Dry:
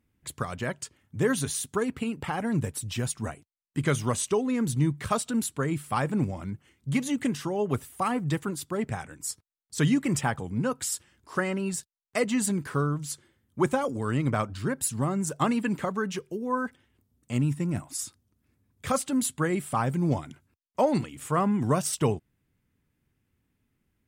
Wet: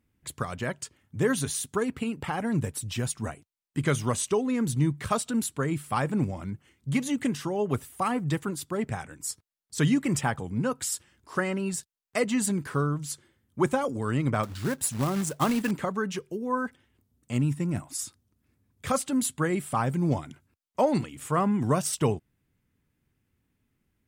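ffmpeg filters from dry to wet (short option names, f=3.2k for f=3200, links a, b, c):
-filter_complex "[0:a]asettb=1/sr,asplit=3[a][b][c];[a]atrim=end=14.434[d];[b]atrim=start=14.43:end=15.71,asetpts=PTS-STARTPTS,afade=t=in:d=0.004:c=qsin,afade=t=out:st=1.276:d=0.004:c=qsin,acrusher=bits=3:mode=log:mix=0:aa=0.000001[e];[c]atrim=start=15.706[f];[d][e]acrossfade=d=0.004:c1=hsin:c2=qsin[g];[g][f]acrossfade=d=0.004:c1=qsin:c2=hsin"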